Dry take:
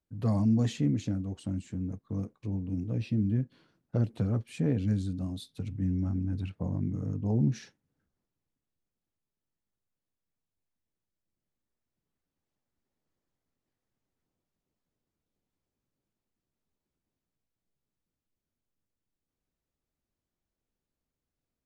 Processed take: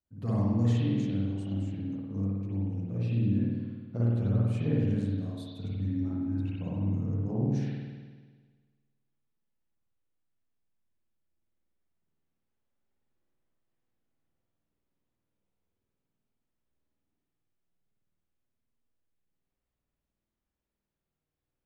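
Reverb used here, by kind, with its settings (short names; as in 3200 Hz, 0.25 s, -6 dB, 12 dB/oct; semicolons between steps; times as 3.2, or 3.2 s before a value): spring tank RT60 1.5 s, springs 51 ms, chirp 50 ms, DRR -7.5 dB; gain -7.5 dB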